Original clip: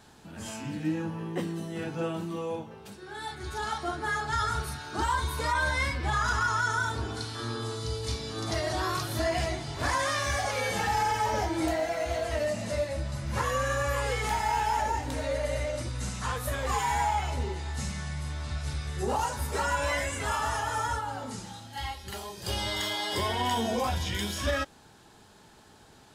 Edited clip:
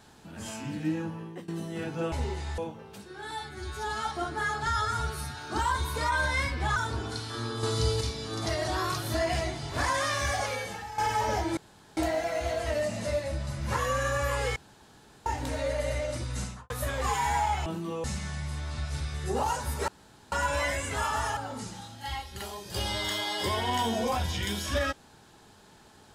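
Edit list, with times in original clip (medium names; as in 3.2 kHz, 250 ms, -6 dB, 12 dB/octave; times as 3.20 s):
0.84–1.48 s: fade out equal-power, to -19.5 dB
2.12–2.50 s: swap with 17.31–17.77 s
3.23–3.74 s: stretch 1.5×
4.33–4.80 s: stretch 1.5×
6.19–6.81 s: delete
7.68–8.06 s: gain +6.5 dB
10.49–11.03 s: fade out quadratic, to -14 dB
11.62 s: insert room tone 0.40 s
14.21–14.91 s: room tone
16.06–16.35 s: studio fade out
19.61 s: insert room tone 0.44 s
20.66–21.09 s: delete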